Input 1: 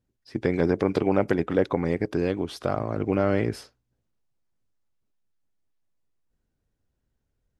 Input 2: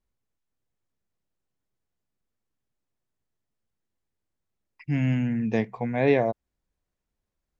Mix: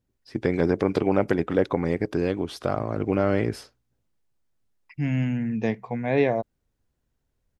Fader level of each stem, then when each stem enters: +0.5 dB, -0.5 dB; 0.00 s, 0.10 s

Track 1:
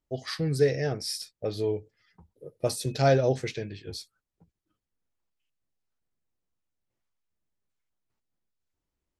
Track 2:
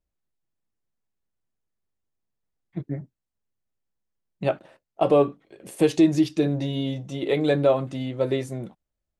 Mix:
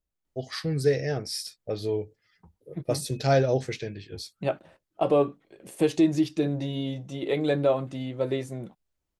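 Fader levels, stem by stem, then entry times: 0.0 dB, -3.5 dB; 0.25 s, 0.00 s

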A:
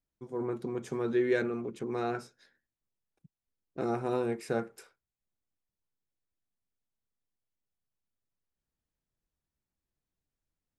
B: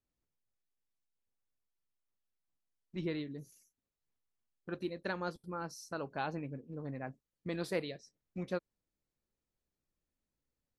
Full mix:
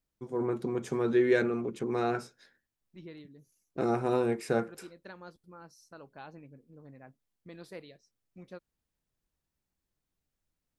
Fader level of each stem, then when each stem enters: +3.0 dB, -10.0 dB; 0.00 s, 0.00 s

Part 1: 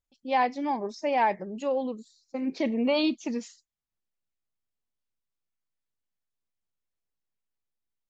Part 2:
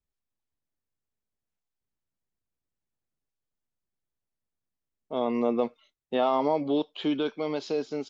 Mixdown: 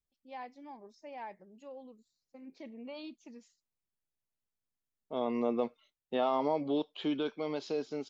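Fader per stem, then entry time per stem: -20.0 dB, -5.5 dB; 0.00 s, 0.00 s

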